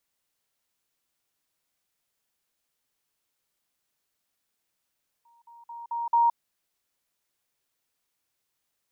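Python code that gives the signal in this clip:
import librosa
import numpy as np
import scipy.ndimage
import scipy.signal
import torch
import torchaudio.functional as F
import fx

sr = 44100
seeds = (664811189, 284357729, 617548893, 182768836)

y = fx.level_ladder(sr, hz=937.0, from_db=-57.5, step_db=10.0, steps=5, dwell_s=0.17, gap_s=0.05)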